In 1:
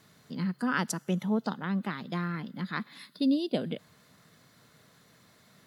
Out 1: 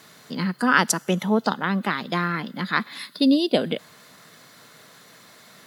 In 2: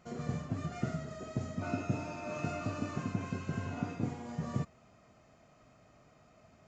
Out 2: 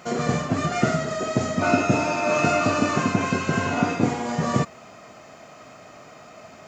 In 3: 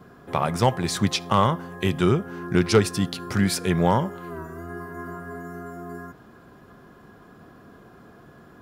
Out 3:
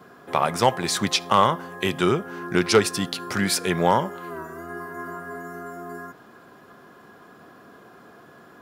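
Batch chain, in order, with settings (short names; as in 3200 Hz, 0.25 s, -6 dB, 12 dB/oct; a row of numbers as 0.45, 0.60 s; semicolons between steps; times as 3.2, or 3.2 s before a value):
HPF 410 Hz 6 dB/oct; match loudness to -23 LUFS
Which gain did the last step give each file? +12.5, +20.0, +4.0 dB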